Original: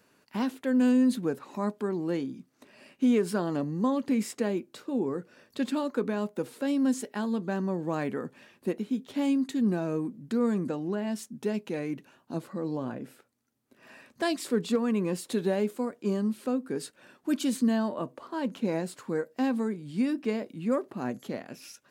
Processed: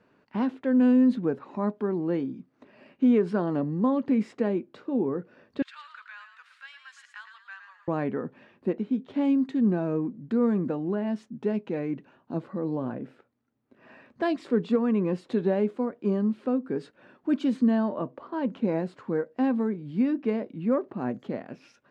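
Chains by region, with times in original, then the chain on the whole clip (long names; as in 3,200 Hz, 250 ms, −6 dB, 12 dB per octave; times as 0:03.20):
0:05.62–0:07.88: Butterworth high-pass 1,300 Hz + echo with shifted repeats 112 ms, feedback 37%, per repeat +54 Hz, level −8 dB
whole clip: low-pass filter 3,500 Hz 12 dB per octave; high-shelf EQ 2,100 Hz −9.5 dB; level +3 dB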